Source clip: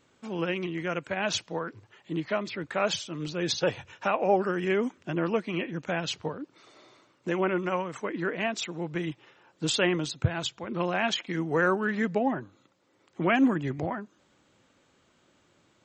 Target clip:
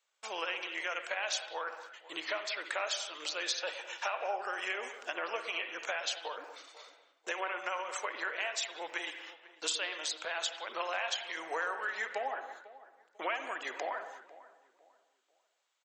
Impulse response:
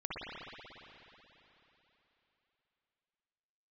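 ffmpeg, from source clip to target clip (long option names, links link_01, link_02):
-filter_complex "[0:a]agate=range=-20dB:threshold=-54dB:ratio=16:detection=peak,highpass=frequency=580:width=0.5412,highpass=frequency=580:width=1.3066,highshelf=frequency=2400:gain=9.5,acompressor=threshold=-36dB:ratio=5,asplit=2[link_01][link_02];[link_02]adelay=496,lowpass=frequency=1300:poles=1,volume=-16.5dB,asplit=2[link_03][link_04];[link_04]adelay=496,lowpass=frequency=1300:poles=1,volume=0.33,asplit=2[link_05][link_06];[link_06]adelay=496,lowpass=frequency=1300:poles=1,volume=0.33[link_07];[link_01][link_03][link_05][link_07]amix=inputs=4:normalize=0,asplit=2[link_08][link_09];[1:a]atrim=start_sample=2205,afade=type=out:start_time=0.3:duration=0.01,atrim=end_sample=13671[link_10];[link_09][link_10]afir=irnorm=-1:irlink=0,volume=-6.5dB[link_11];[link_08][link_11]amix=inputs=2:normalize=0"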